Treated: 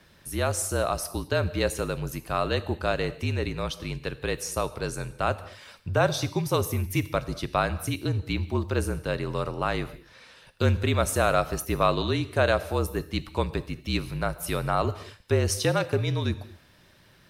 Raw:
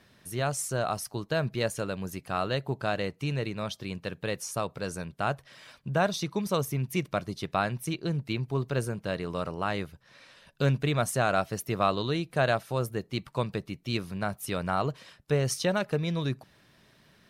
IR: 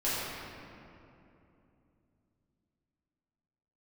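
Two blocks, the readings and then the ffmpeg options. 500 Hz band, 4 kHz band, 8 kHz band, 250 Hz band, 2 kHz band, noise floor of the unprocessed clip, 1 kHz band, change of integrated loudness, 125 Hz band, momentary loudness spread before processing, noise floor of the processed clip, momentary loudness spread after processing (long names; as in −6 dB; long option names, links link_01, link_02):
+3.0 dB, +3.0 dB, +4.0 dB, +1.5 dB, +2.5 dB, −62 dBFS, +2.5 dB, +3.0 dB, +3.0 dB, 8 LU, −57 dBFS, 8 LU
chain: -filter_complex "[0:a]asplit=2[link_01][link_02];[link_02]aemphasis=mode=production:type=50fm[link_03];[1:a]atrim=start_sample=2205,afade=type=out:start_time=0.29:duration=0.01,atrim=end_sample=13230[link_04];[link_03][link_04]afir=irnorm=-1:irlink=0,volume=-22.5dB[link_05];[link_01][link_05]amix=inputs=2:normalize=0,afreqshift=-41,volume=2.5dB"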